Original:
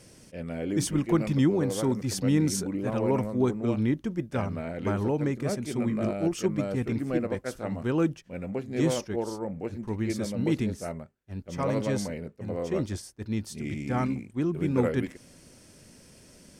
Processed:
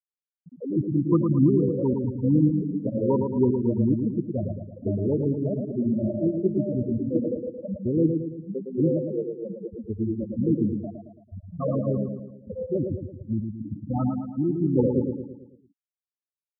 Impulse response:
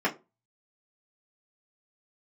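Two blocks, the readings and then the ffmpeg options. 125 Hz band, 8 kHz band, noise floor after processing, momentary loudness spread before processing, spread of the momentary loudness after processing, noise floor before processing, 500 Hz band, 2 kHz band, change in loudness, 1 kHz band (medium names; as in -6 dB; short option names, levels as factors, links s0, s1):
+3.5 dB, under -40 dB, under -85 dBFS, 10 LU, 13 LU, -55 dBFS, +2.5 dB, under -40 dB, +3.0 dB, -4.5 dB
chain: -af "afftfilt=real='re*gte(hypot(re,im),0.178)':imag='im*gte(hypot(re,im),0.178)':win_size=1024:overlap=0.75,aecho=1:1:111|222|333|444|555|666:0.531|0.26|0.127|0.0625|0.0306|0.015,volume=1.41"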